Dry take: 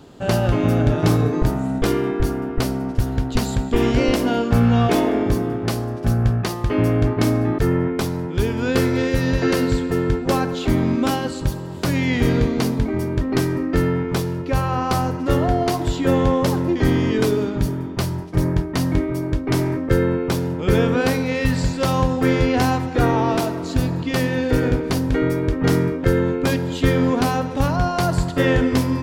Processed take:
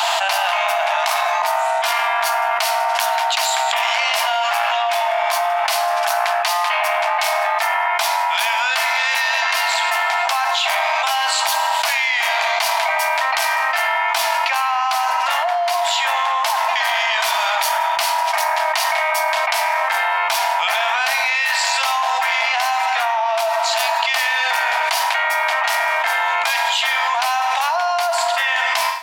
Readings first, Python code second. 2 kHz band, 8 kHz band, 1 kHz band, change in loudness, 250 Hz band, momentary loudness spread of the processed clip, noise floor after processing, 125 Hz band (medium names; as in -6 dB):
+11.5 dB, +9.5 dB, +10.5 dB, +2.5 dB, under -40 dB, 2 LU, -20 dBFS, under -40 dB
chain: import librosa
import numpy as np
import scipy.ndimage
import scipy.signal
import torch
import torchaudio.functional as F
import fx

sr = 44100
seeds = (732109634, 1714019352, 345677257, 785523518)

y = fx.fade_out_tail(x, sr, length_s=3.86)
y = 10.0 ** (-14.0 / 20.0) * np.tanh(y / 10.0 ** (-14.0 / 20.0))
y = scipy.signal.sosfilt(scipy.signal.cheby1(6, 6, 650.0, 'highpass', fs=sr, output='sos'), y)
y = fx.rev_schroeder(y, sr, rt60_s=0.59, comb_ms=33, drr_db=13.5)
y = fx.env_flatten(y, sr, amount_pct=100)
y = y * librosa.db_to_amplitude(5.5)